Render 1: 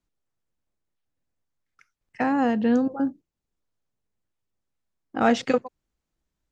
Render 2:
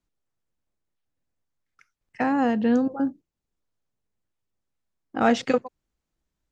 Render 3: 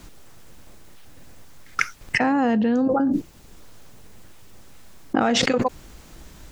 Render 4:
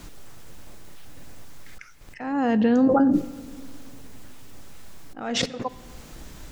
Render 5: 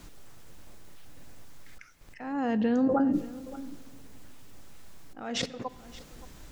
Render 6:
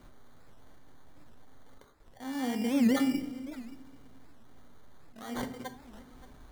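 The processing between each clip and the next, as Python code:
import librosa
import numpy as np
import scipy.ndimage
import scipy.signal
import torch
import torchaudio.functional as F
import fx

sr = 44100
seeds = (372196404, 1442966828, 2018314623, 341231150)

y1 = x
y2 = fx.env_flatten(y1, sr, amount_pct=100)
y2 = y2 * 10.0 ** (-3.0 / 20.0)
y3 = fx.auto_swell(y2, sr, attack_ms=508.0)
y3 = fx.room_shoebox(y3, sr, seeds[0], volume_m3=2900.0, walls='mixed', distance_m=0.35)
y3 = y3 * 10.0 ** (2.0 / 20.0)
y4 = y3 + 10.0 ** (-18.5 / 20.0) * np.pad(y3, (int(575 * sr / 1000.0), 0))[:len(y3)]
y4 = y4 * 10.0 ** (-6.5 / 20.0)
y5 = fx.sample_hold(y4, sr, seeds[1], rate_hz=2600.0, jitter_pct=0)
y5 = fx.rev_fdn(y5, sr, rt60_s=0.54, lf_ratio=1.45, hf_ratio=0.65, size_ms=23.0, drr_db=5.5)
y5 = fx.record_warp(y5, sr, rpm=78.0, depth_cents=250.0)
y5 = y5 * 10.0 ** (-6.5 / 20.0)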